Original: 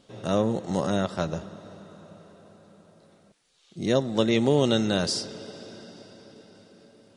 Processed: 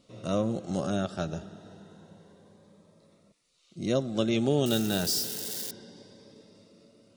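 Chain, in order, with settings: 4.66–5.71 switching spikes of -22 dBFS; cascading phaser rising 0.29 Hz; gain -3 dB

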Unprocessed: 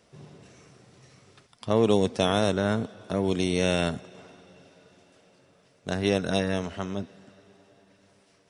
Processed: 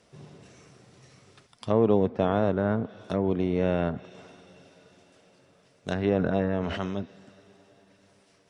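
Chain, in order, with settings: treble ducked by the level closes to 1400 Hz, closed at -22.5 dBFS; 6.08–6.95 sustainer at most 30 dB/s

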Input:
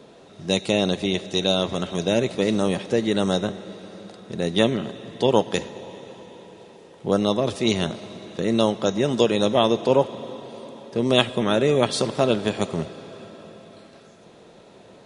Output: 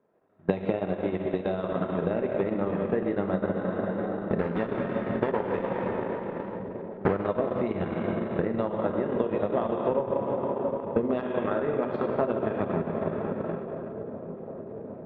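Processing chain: 4.39–7.27 block floating point 3-bit; bell 460 Hz -2 dB 1.4 oct; AGC gain up to 13.5 dB; gate -29 dBFS, range -22 dB; plate-style reverb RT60 2.8 s, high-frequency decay 0.85×, DRR 0 dB; compressor 8:1, threshold -25 dBFS, peak gain reduction 18.5 dB; LPF 1800 Hz 24 dB/oct; low shelf 180 Hz -8 dB; transient shaper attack +7 dB, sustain -10 dB; dark delay 0.764 s, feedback 81%, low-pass 610 Hz, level -11.5 dB; gain +1.5 dB

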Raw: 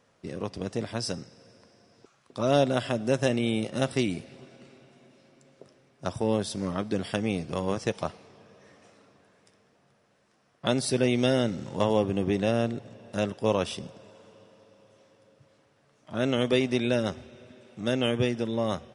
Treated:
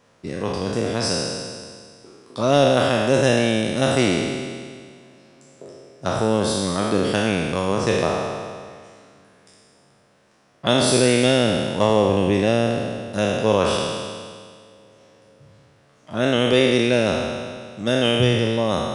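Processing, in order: spectral trails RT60 1.94 s; gain +5 dB

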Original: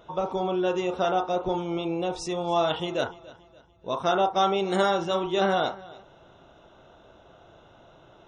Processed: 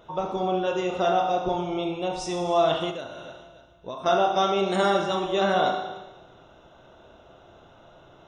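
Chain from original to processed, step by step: Schroeder reverb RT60 1.1 s, combs from 25 ms, DRR 3.5 dB; 2.9–4.06 compressor 12:1, threshold -32 dBFS, peak gain reduction 11 dB

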